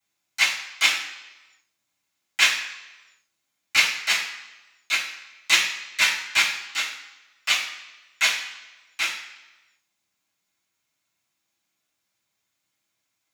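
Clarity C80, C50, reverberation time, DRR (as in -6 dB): 9.0 dB, 6.5 dB, 1.1 s, -14.0 dB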